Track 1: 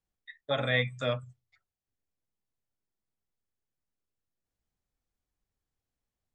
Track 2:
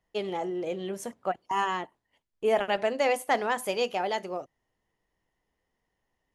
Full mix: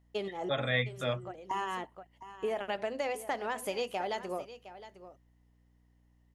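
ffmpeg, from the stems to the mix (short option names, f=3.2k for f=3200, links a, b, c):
-filter_complex "[0:a]volume=-2.5dB,asplit=2[a][b];[1:a]acompressor=threshold=-30dB:ratio=6,volume=-1dB,asplit=2[c][d];[d]volume=-14.5dB[e];[b]apad=whole_len=279968[f];[c][f]sidechaincompress=threshold=-54dB:ratio=8:attack=6.4:release=140[g];[e]aecho=0:1:712:1[h];[a][g][h]amix=inputs=3:normalize=0,aeval=exprs='val(0)+0.000562*(sin(2*PI*60*n/s)+sin(2*PI*2*60*n/s)/2+sin(2*PI*3*60*n/s)/3+sin(2*PI*4*60*n/s)/4+sin(2*PI*5*60*n/s)/5)':c=same"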